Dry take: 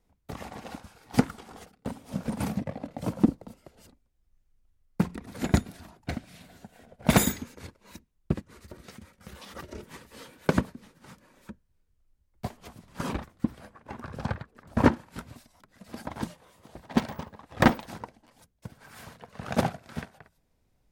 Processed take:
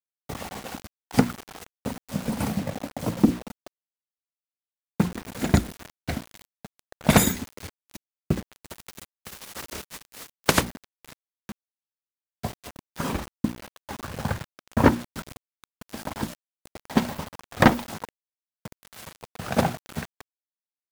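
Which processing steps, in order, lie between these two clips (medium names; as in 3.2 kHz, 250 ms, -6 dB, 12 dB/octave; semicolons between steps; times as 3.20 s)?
8.69–10.62 s: spectral contrast reduction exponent 0.46; hum notches 60/120/180/240/300/360 Hz; 18.03–18.81 s: high-pass 120 Hz 12 dB/octave; bit crusher 7-bit; trim +4 dB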